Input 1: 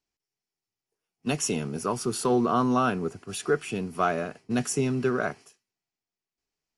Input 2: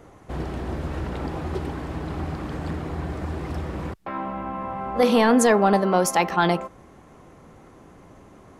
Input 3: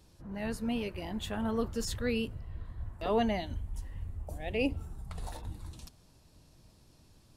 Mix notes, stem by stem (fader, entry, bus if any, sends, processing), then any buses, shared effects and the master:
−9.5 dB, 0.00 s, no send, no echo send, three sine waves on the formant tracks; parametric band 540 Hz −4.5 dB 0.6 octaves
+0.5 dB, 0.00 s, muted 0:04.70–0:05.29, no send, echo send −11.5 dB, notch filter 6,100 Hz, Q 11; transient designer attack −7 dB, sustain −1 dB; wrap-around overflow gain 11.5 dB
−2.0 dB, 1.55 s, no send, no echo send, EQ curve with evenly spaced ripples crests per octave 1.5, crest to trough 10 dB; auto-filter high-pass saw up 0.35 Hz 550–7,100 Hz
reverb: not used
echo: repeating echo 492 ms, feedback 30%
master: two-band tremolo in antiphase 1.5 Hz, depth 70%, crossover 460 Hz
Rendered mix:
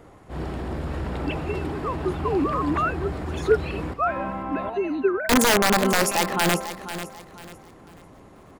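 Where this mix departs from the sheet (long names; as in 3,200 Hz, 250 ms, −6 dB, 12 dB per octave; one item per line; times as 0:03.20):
stem 1 −9.5 dB → +1.5 dB
stem 3 −2.0 dB → −10.0 dB
master: missing two-band tremolo in antiphase 1.5 Hz, depth 70%, crossover 460 Hz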